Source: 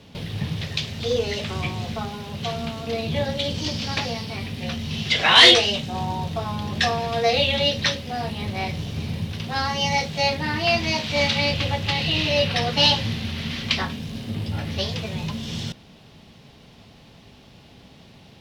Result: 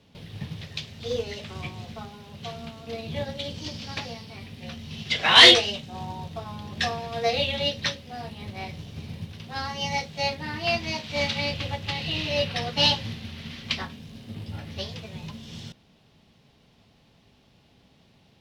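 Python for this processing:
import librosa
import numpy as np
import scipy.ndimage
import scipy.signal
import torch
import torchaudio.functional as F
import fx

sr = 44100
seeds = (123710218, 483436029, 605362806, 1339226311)

y = fx.upward_expand(x, sr, threshold_db=-31.0, expansion=1.5)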